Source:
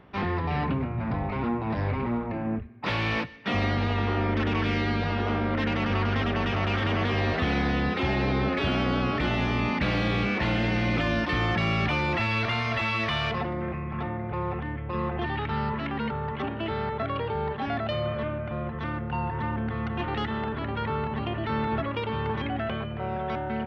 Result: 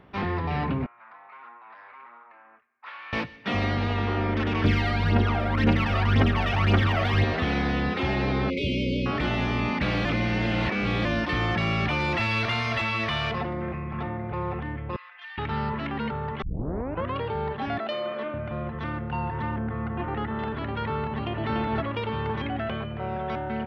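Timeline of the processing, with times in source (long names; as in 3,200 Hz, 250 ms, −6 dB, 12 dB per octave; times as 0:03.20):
0:00.86–0:03.13: four-pole ladder band-pass 1,500 Hz, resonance 40%
0:04.64–0:07.24: phase shifter 1.9 Hz, delay 1.7 ms, feedback 65%
0:08.50–0:09.06: linear-phase brick-wall band-stop 610–2,000 Hz
0:10.05–0:11.05: reverse
0:12.00–0:12.82: high-shelf EQ 4,000 Hz +5.5 dB
0:14.96–0:15.38: four-pole ladder high-pass 1,400 Hz, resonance 30%
0:16.42: tape start 0.74 s
0:17.78–0:18.34: high-pass filter 240 Hz 24 dB per octave
0:19.58–0:20.39: low-pass filter 1,800 Hz
0:21.07–0:21.51: delay throw 290 ms, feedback 30%, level −5.5 dB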